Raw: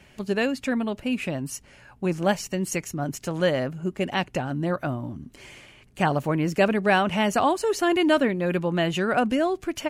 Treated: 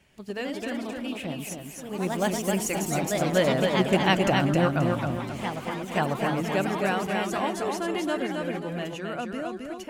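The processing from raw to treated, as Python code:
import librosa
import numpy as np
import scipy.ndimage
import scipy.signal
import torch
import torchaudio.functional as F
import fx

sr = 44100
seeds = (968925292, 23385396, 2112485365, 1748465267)

p1 = fx.doppler_pass(x, sr, speed_mps=7, closest_m=4.4, pass_at_s=4.22)
p2 = fx.rider(p1, sr, range_db=4, speed_s=0.5)
p3 = p1 + (p2 * librosa.db_to_amplitude(-2.5))
p4 = fx.peak_eq(p3, sr, hz=12000.0, db=-3.0, octaves=0.32)
p5 = p4 + fx.echo_feedback(p4, sr, ms=266, feedback_pct=36, wet_db=-4, dry=0)
p6 = fx.echo_pitch(p5, sr, ms=123, semitones=2, count=3, db_per_echo=-6.0)
y = fx.high_shelf(p6, sr, hz=9200.0, db=7.0)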